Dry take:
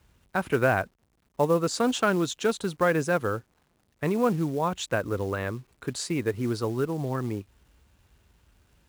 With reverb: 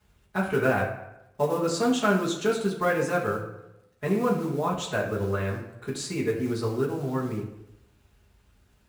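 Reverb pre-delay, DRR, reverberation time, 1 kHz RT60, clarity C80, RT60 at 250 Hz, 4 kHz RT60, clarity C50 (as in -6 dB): 5 ms, -8.5 dB, 0.85 s, 0.85 s, 9.0 dB, 0.85 s, 0.60 s, 6.5 dB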